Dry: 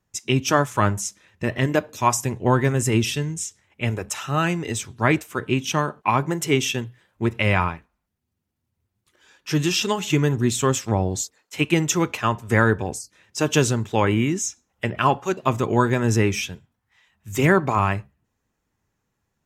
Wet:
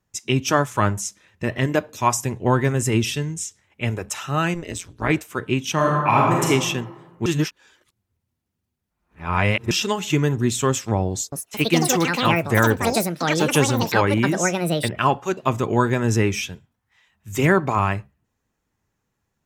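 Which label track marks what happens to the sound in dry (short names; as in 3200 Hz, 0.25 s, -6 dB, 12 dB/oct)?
4.540000	5.100000	AM modulator 180 Hz, depth 90%
5.750000	6.470000	reverb throw, RT60 1.4 s, DRR -3.5 dB
7.260000	9.710000	reverse
11.100000	16.440000	echoes that change speed 0.221 s, each echo +7 st, echoes 2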